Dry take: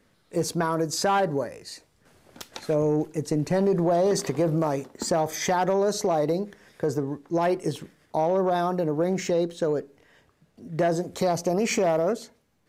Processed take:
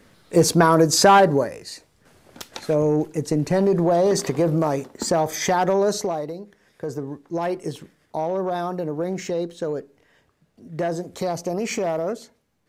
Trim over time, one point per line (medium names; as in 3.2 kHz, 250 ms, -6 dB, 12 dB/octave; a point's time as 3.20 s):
1.11 s +10 dB
1.72 s +3.5 dB
5.93 s +3.5 dB
6.35 s -8.5 dB
7.10 s -1.5 dB